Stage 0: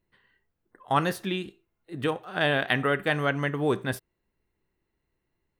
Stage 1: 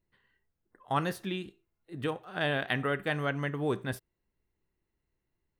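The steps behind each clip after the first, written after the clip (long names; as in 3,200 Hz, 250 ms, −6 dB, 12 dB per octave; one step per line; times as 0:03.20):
low-shelf EQ 150 Hz +4.5 dB
level −6 dB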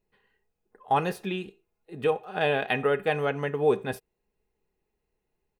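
comb filter 4.8 ms, depth 36%
hollow resonant body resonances 480/760/2,500 Hz, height 11 dB, ringing for 25 ms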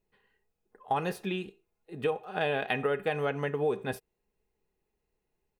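downward compressor, threshold −23 dBFS, peak gain reduction 6.5 dB
level −1.5 dB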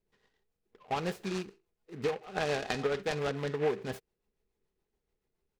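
rotating-speaker cabinet horn 7 Hz
short delay modulated by noise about 1,500 Hz, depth 0.064 ms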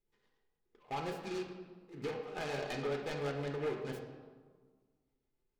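hard clipping −26 dBFS, distortion −15 dB
convolution reverb RT60 1.6 s, pre-delay 3 ms, DRR 1 dB
level −7.5 dB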